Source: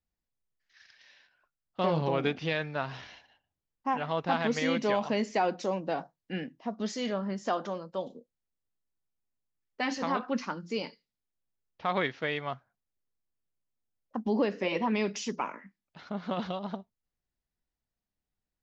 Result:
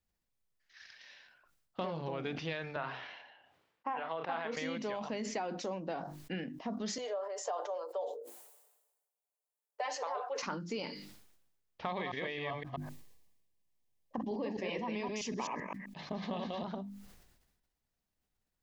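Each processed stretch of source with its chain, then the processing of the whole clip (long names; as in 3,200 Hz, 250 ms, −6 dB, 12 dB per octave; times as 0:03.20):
0:02.76–0:04.57: high-pass filter 110 Hz + three-way crossover with the lows and the highs turned down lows −13 dB, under 360 Hz, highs −19 dB, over 3,500 Hz + double-tracking delay 31 ms −11 dB
0:06.98–0:10.43: Butterworth high-pass 440 Hz 48 dB per octave + flat-topped bell 2,700 Hz −10 dB 2.6 octaves + comb filter 6.8 ms, depth 55%
0:11.86–0:16.64: delay that plays each chunk backwards 129 ms, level −2 dB + Butterworth band-reject 1,400 Hz, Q 3.8
whole clip: downward compressor 6 to 1, threshold −38 dBFS; mains-hum notches 50/100/150/200/250/300/350 Hz; level that may fall only so fast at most 50 dB per second; level +2.5 dB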